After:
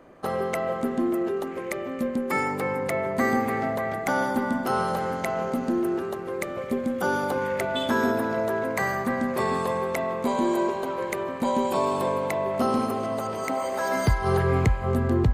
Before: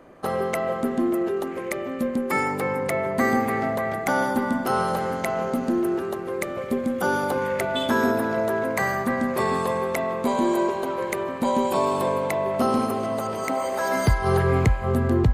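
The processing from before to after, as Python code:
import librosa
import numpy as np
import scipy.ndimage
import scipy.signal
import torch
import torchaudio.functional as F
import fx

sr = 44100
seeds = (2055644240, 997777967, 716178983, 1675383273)

p1 = fx.peak_eq(x, sr, hz=11000.0, db=-3.5, octaves=0.39)
p2 = p1 + fx.echo_single(p1, sr, ms=275, db=-22.5, dry=0)
y = p2 * librosa.db_to_amplitude(-2.0)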